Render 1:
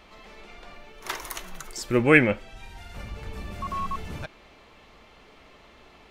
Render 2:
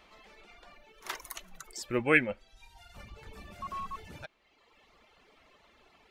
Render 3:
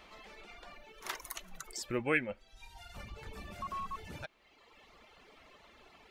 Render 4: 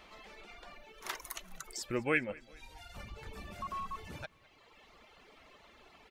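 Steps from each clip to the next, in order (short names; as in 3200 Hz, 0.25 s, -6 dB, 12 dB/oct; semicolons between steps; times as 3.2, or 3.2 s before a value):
reverb removal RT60 1.3 s; low shelf 340 Hz -5.5 dB; gain -5.5 dB
compressor 1.5:1, threshold -47 dBFS, peak gain reduction 10.5 dB; gain +3 dB
feedback echo 0.206 s, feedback 49%, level -23.5 dB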